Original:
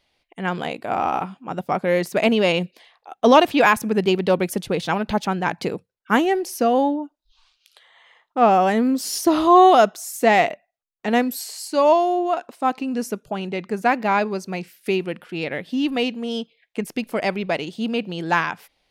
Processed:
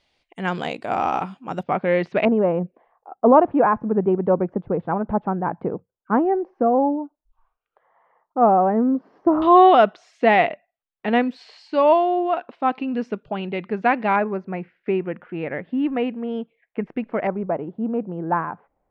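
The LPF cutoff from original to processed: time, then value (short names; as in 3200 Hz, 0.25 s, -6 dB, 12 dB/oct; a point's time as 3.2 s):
LPF 24 dB/oct
8700 Hz
from 1.63 s 3200 Hz
from 2.25 s 1200 Hz
from 9.42 s 3300 Hz
from 14.16 s 2000 Hz
from 17.27 s 1200 Hz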